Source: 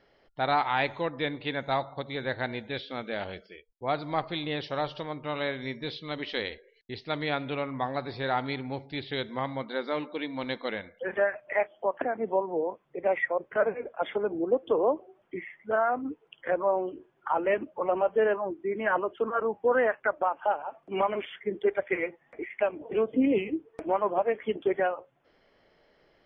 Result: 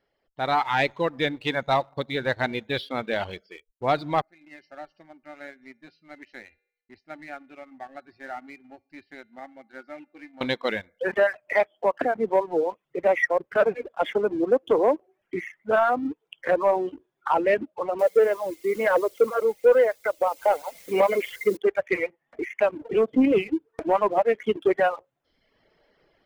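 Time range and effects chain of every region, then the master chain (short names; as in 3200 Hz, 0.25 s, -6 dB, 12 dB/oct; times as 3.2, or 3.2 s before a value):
4.21–10.41 fixed phaser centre 690 Hz, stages 8 + resonator 160 Hz, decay 0.8 s, harmonics odd, mix 80%
17.99–21.57 requantised 8-bit, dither triangular + small resonant body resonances 500/2100 Hz, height 15 dB, ringing for 30 ms
whole clip: reverb removal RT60 0.95 s; AGC gain up to 13 dB; sample leveller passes 1; gain -9 dB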